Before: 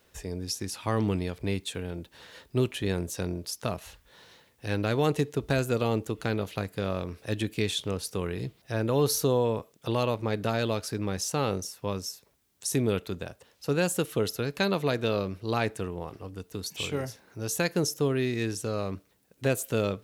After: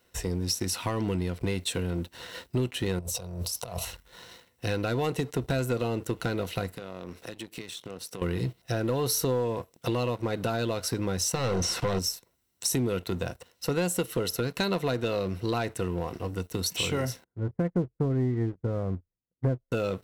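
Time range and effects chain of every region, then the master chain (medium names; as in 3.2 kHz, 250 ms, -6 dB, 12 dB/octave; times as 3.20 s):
2.99–3.85 s: compressor with a negative ratio -41 dBFS + static phaser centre 710 Hz, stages 4
6.72–8.22 s: high-pass 150 Hz + compression, threshold -44 dBFS
11.35–11.99 s: compression 5:1, threshold -37 dBFS + waveshaping leveller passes 5 + distance through air 75 m
17.24–19.72 s: brick-wall FIR low-pass 2.3 kHz + tilt EQ -4 dB/octave + upward expansion 2.5:1, over -35 dBFS
whole clip: rippled EQ curve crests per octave 2, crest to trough 7 dB; compression 4:1, threshold -32 dBFS; waveshaping leveller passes 2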